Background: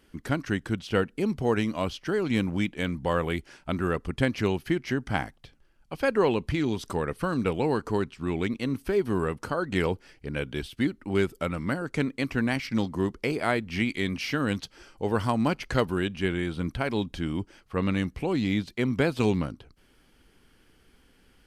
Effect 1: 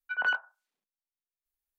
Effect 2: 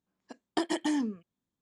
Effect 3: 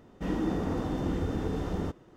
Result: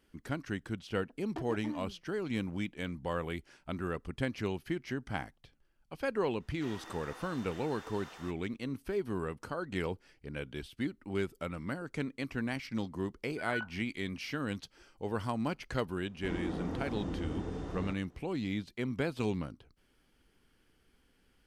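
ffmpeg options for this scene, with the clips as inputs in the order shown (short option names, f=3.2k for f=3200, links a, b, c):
-filter_complex "[3:a]asplit=2[a][b];[0:a]volume=-9dB[c];[2:a]adynamicsmooth=sensitivity=2:basefreq=770[d];[a]highpass=1.3k[e];[b]aresample=22050,aresample=44100[f];[d]atrim=end=1.61,asetpts=PTS-STARTPTS,volume=-11.5dB,afade=t=in:d=0.004:c=hsin,afade=t=out:st=1.606:d=0.004:c=hsin,adelay=790[g];[e]atrim=end=2.16,asetpts=PTS-STARTPTS,volume=-3dB,afade=t=in:d=0.004:c=hsin,afade=t=out:st=2.156:d=0.004:c=hsin,adelay=6400[h];[1:a]atrim=end=1.78,asetpts=PTS-STARTPTS,volume=-11dB,afade=t=in:d=0.004:c=hsin,afade=t=out:st=1.776:d=0.004:c=hsin,adelay=13280[i];[f]atrim=end=2.16,asetpts=PTS-STARTPTS,volume=-7.5dB,afade=t=in:d=0.004:c=hsin,afade=t=out:st=2.156:d=0.004:c=hsin,adelay=16020[j];[c][g][h][i][j]amix=inputs=5:normalize=0"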